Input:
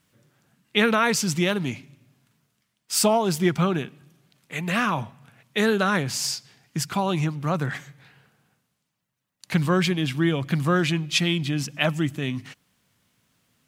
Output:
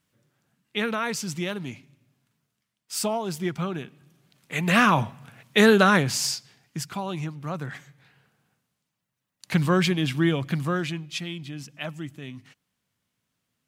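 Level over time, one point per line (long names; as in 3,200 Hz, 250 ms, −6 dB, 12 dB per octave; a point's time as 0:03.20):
0:03.73 −7 dB
0:04.79 +5 dB
0:05.81 +5 dB
0:06.99 −7 dB
0:07.70 −7 dB
0:09.62 0 dB
0:10.30 0 dB
0:11.25 −11 dB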